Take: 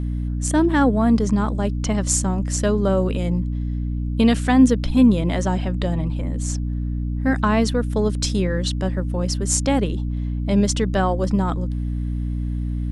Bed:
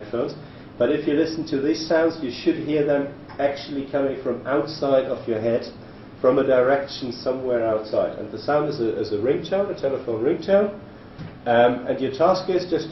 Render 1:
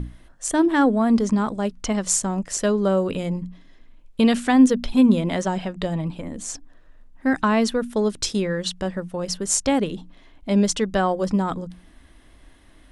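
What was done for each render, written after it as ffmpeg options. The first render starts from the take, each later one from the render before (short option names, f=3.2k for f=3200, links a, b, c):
-af "bandreject=f=60:t=h:w=6,bandreject=f=120:t=h:w=6,bandreject=f=180:t=h:w=6,bandreject=f=240:t=h:w=6,bandreject=f=300:t=h:w=6"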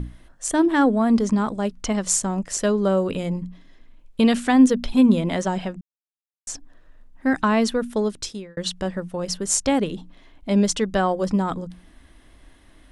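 -filter_complex "[0:a]asplit=4[a][b][c][d];[a]atrim=end=5.81,asetpts=PTS-STARTPTS,afade=t=out:st=5.806:d=0.004:c=hsin[e];[b]atrim=start=5.81:end=6.47,asetpts=PTS-STARTPTS,volume=0[f];[c]atrim=start=6.47:end=8.57,asetpts=PTS-STARTPTS,afade=t=in:d=0.004:c=hsin,afade=t=out:st=1.47:d=0.63[g];[d]atrim=start=8.57,asetpts=PTS-STARTPTS,afade=t=in:d=0.004:c=hsin[h];[e][f][g][h]concat=n=4:v=0:a=1"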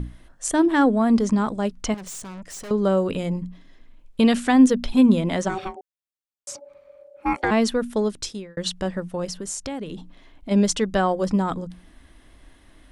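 -filter_complex "[0:a]asettb=1/sr,asplit=3[a][b][c];[a]atrim=end=1.944[d];[b]atrim=start=1.94:end=2.71,asetpts=PTS-STARTPTS,afade=t=in:d=0.004:c=qsin,afade=t=out:st=0.766:d=0.004:c=qsin,aeval=exprs='(tanh(56.2*val(0)+0.3)-tanh(0.3))/56.2':c=same[e];[c]atrim=start=2.706[f];[d][e]acrossfade=d=0.004:c1=hsin:c2=qsin[g];[g][f]acrossfade=d=0.004:c1=qsin:c2=hsin,asplit=3[h][i][j];[h]afade=t=out:st=5.48:d=0.02[k];[i]aeval=exprs='val(0)*sin(2*PI*570*n/s)':c=same,afade=t=in:st=5.48:d=0.02,afade=t=out:st=7.5:d=0.02[l];[j]afade=t=in:st=7.5:d=0.02[m];[k][l][m]amix=inputs=3:normalize=0,asplit=3[n][o][p];[n]afade=t=out:st=9.27:d=0.02[q];[o]acompressor=threshold=-29dB:ratio=4:attack=3.2:release=140:knee=1:detection=peak,afade=t=in:st=9.27:d=0.02,afade=t=out:st=10.5:d=0.02[r];[p]afade=t=in:st=10.5:d=0.02[s];[q][r][s]amix=inputs=3:normalize=0"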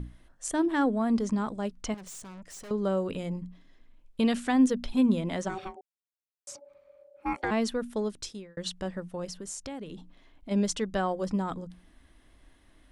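-af "volume=-8dB"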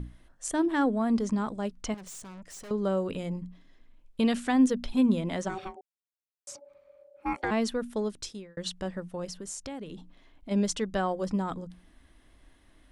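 -af anull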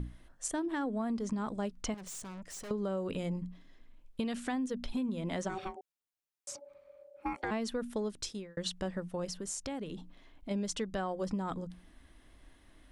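-af "alimiter=limit=-22dB:level=0:latency=1:release=279,acompressor=threshold=-31dB:ratio=6"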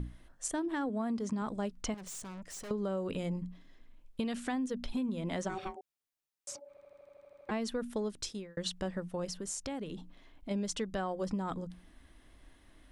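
-filter_complex "[0:a]asettb=1/sr,asplit=3[a][b][c];[a]atrim=end=0.894[d];[b]atrim=start=0.89:end=1.42,asetpts=PTS-STARTPTS,afade=t=in:d=0.004:c=qsin,afade=t=out:st=0.526:d=0.004:c=qsin,highpass=65[e];[c]atrim=start=1.416[f];[d][e]acrossfade=d=0.004:c1=hsin:c2=qsin[g];[g][f]acrossfade=d=0.004:c1=qsin:c2=hsin,asplit=11[h][i][j][k][l][m][n][o][p][q][r];[h]atrim=end=6.772[s];[i]atrim=start=6.688:end=6.772[t];[j]atrim=start=6.688:end=6.772[u];[k]atrim=start=6.688:end=6.772[v];[l]atrim=start=6.688:end=6.772[w];[m]atrim=start=6.688:end=6.772[x];[n]atrim=start=6.688:end=6.772[y];[o]atrim=start=6.688:end=6.772[z];[p]atrim=start=6.688:end=6.772[aa];[q]atrim=start=6.688:end=6.772[ab];[r]atrim=start=7.488[ac];[s][t]acrossfade=d=0.004:c1=hsin:c2=hsin[ad];[ad][u]acrossfade=d=0.004:c1=hsin:c2=hsin[ae];[ae][v]acrossfade=d=0.004:c1=hsin:c2=hsin[af];[af][w]acrossfade=d=0.004:c1=hsin:c2=hsin[ag];[ag][x]acrossfade=d=0.004:c1=hsin:c2=hsin[ah];[ah][y]acrossfade=d=0.004:c1=hsin:c2=hsin[ai];[ai][z]acrossfade=d=0.004:c1=hsin:c2=hsin[aj];[aj][aa]acrossfade=d=0.004:c1=hsin:c2=hsin[ak];[ak][ab]acrossfade=d=0.004:c1=hsin:c2=hsin[al];[al][ac]acrossfade=d=0.004:c1=hsin:c2=hsin"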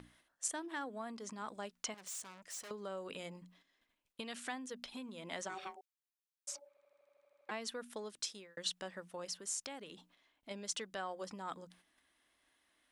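-af "agate=range=-7dB:threshold=-52dB:ratio=16:detection=peak,highpass=f=1.2k:p=1"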